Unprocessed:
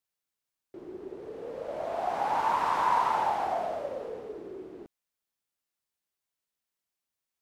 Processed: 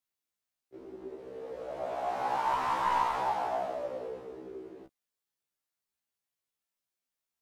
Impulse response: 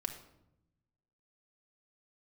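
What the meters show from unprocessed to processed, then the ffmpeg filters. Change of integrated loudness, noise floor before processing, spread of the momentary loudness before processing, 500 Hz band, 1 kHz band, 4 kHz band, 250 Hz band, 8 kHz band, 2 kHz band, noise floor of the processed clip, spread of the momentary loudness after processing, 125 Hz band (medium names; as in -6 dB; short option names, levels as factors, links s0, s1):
-3.0 dB, under -85 dBFS, 18 LU, -2.0 dB, -3.0 dB, -1.0 dB, -2.5 dB, no reading, -2.0 dB, under -85 dBFS, 17 LU, -1.5 dB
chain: -af "aeval=exprs='clip(val(0),-1,0.0794)':c=same,afftfilt=real='re*1.73*eq(mod(b,3),0)':imag='im*1.73*eq(mod(b,3),0)':win_size=2048:overlap=0.75"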